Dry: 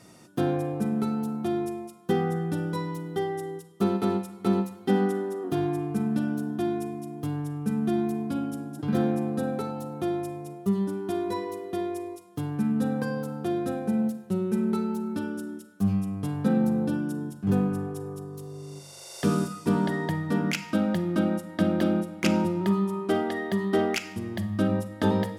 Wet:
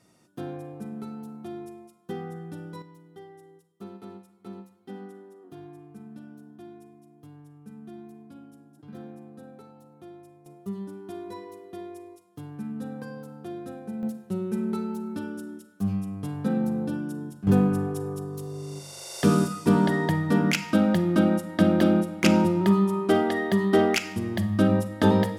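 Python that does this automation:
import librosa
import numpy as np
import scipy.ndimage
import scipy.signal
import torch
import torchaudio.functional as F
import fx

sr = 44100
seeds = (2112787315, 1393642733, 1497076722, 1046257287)

y = fx.gain(x, sr, db=fx.steps((0.0, -10.0), (2.82, -17.5), (10.46, -9.0), (14.03, -2.5), (17.47, 4.0)))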